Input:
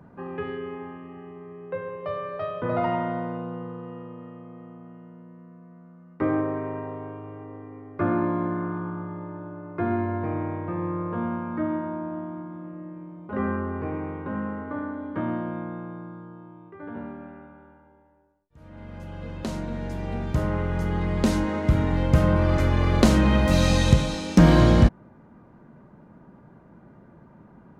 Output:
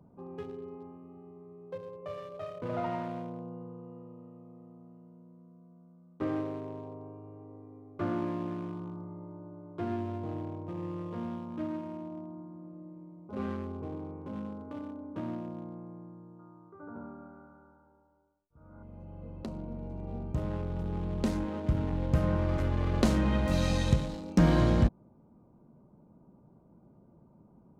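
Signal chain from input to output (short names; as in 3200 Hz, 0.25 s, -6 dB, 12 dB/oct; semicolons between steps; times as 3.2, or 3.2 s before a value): Wiener smoothing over 25 samples; 16.39–18.83 synth low-pass 1400 Hz, resonance Q 8.3; gain -8 dB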